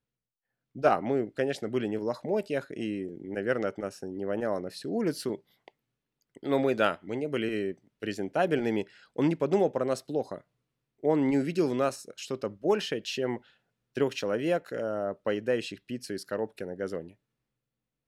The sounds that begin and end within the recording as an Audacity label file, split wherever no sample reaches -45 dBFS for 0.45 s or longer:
0.760000	5.680000	sound
6.360000	10.410000	sound
11.030000	13.380000	sound
13.960000	17.110000	sound